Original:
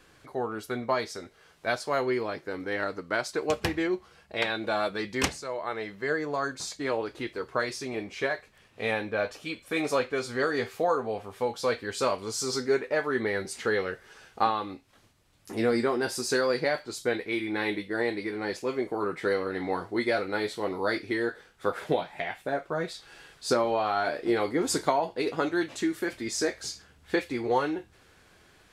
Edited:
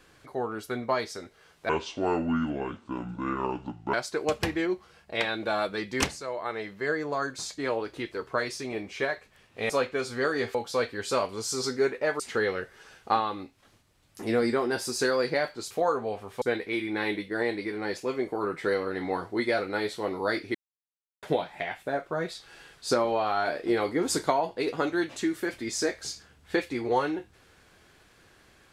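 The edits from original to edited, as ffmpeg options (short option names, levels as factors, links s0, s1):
-filter_complex "[0:a]asplit=10[s0][s1][s2][s3][s4][s5][s6][s7][s8][s9];[s0]atrim=end=1.694[s10];[s1]atrim=start=1.69:end=3.15,asetpts=PTS-STARTPTS,asetrate=28665,aresample=44100,atrim=end_sample=99055,asetpts=PTS-STARTPTS[s11];[s2]atrim=start=3.146:end=8.912[s12];[s3]atrim=start=9.878:end=10.732[s13];[s4]atrim=start=11.438:end=13.092[s14];[s5]atrim=start=13.498:end=17.012[s15];[s6]atrim=start=10.728:end=11.442[s16];[s7]atrim=start=17.008:end=21.14,asetpts=PTS-STARTPTS,afade=t=out:st=4.128:d=0.004:c=hsin[s17];[s8]atrim=start=21.14:end=21.82,asetpts=PTS-STARTPTS,volume=0[s18];[s9]atrim=start=21.82,asetpts=PTS-STARTPTS,afade=t=in:d=0.004:c=hsin[s19];[s10][s11]acrossfade=d=0.004:c1=hsin:c2=hsin[s20];[s20][s12]acrossfade=d=0.004:c1=hsin:c2=hsin[s21];[s21][s13]acrossfade=d=0.004:c1=hsin:c2=hsin[s22];[s22][s14]acrossfade=d=0.004:c1=hsin:c2=hsin[s23];[s23][s15]acrossfade=d=0.004:c1=hsin:c2=hsin[s24];[s24][s16]acrossfade=d=0.004:c1=hsin:c2=hsin[s25];[s17][s18][s19]concat=n=3:v=0:a=1[s26];[s25][s26]acrossfade=d=0.004:c1=hsin:c2=hsin"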